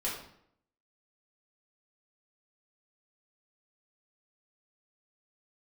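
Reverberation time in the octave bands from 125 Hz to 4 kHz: 0.70 s, 0.80 s, 0.70 s, 0.65 s, 0.60 s, 0.50 s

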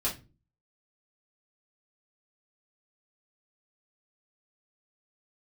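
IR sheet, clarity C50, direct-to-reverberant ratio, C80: 11.0 dB, -6.5 dB, 19.0 dB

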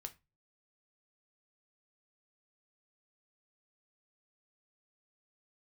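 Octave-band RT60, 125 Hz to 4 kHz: 0.55 s, 0.30 s, 0.25 s, 0.25 s, 0.25 s, 0.20 s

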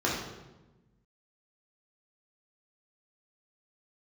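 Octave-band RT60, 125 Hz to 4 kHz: 1.7 s, 1.6 s, 1.2 s, 1.0 s, 0.85 s, 0.80 s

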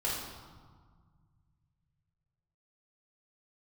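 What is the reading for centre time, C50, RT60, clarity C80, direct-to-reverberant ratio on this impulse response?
79 ms, 0.0 dB, 1.6 s, 3.0 dB, -7.5 dB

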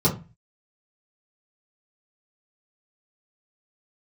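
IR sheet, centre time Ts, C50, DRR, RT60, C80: 16 ms, 11.5 dB, -7.5 dB, 0.30 s, 18.0 dB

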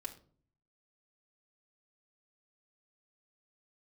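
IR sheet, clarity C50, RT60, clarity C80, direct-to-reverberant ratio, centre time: 13.0 dB, 0.45 s, 17.5 dB, -1.0 dB, 8 ms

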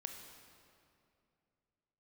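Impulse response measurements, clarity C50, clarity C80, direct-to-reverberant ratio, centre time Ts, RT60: 5.0 dB, 6.0 dB, 4.0 dB, 54 ms, 2.6 s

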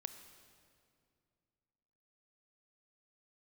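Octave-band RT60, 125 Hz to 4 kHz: 2.9 s, 2.8 s, 2.5 s, 2.2 s, 2.0 s, 1.8 s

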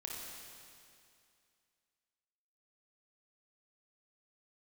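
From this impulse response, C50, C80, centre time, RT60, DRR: -1.5 dB, 0.5 dB, 132 ms, 2.4 s, -3.0 dB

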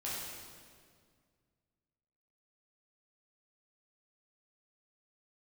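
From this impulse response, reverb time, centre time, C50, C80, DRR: 2.0 s, 114 ms, -2.0 dB, 0.5 dB, -8.0 dB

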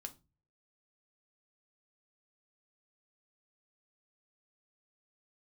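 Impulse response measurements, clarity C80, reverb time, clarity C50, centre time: 25.5 dB, 0.30 s, 18.5 dB, 6 ms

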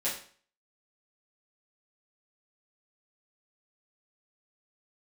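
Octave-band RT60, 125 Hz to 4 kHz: 0.45 s, 0.45 s, 0.45 s, 0.45 s, 0.45 s, 0.45 s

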